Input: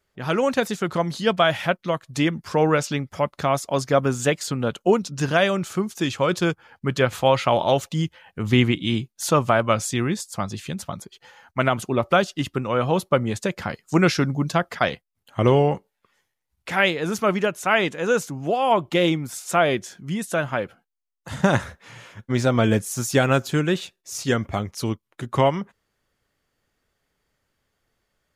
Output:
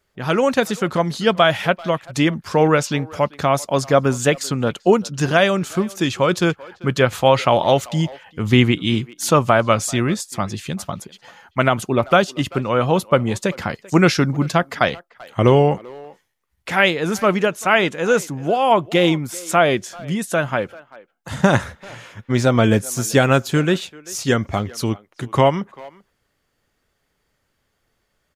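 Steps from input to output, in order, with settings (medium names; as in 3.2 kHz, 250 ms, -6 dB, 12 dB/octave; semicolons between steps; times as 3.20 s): speakerphone echo 390 ms, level -20 dB; trim +4 dB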